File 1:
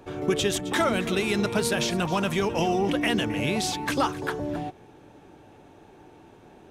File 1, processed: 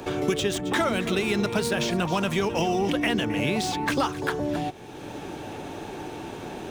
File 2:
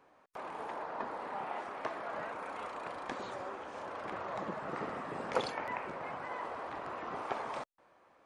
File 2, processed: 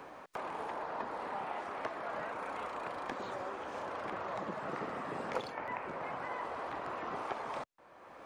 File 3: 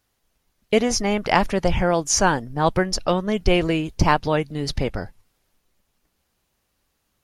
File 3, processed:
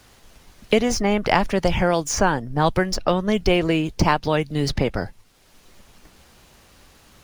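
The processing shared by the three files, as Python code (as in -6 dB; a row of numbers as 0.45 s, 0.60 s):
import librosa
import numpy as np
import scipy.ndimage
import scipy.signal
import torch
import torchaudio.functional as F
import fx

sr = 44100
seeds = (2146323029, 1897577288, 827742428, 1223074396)

y = scipy.ndimage.median_filter(x, 3, mode='constant')
y = fx.band_squash(y, sr, depth_pct=70)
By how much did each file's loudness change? -1.0 LU, 0.0 LU, 0.0 LU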